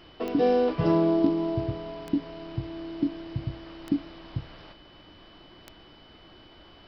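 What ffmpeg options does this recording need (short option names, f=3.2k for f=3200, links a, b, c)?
-af "adeclick=t=4,bandreject=f=3k:w=30"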